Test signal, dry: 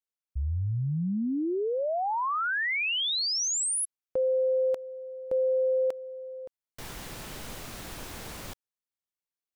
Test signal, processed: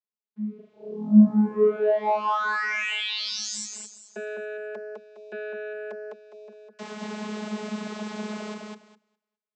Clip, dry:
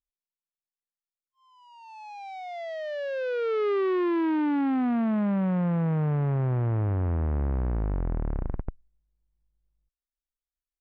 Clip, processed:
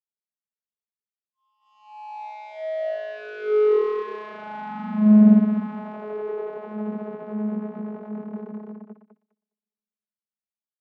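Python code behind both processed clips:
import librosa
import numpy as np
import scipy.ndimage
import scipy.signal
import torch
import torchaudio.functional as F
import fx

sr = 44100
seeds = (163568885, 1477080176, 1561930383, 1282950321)

y = fx.echo_thinned(x, sr, ms=205, feedback_pct=27, hz=170.0, wet_db=-3.0)
y = fx.leveller(y, sr, passes=2)
y = fx.vocoder(y, sr, bands=32, carrier='saw', carrier_hz=212.0)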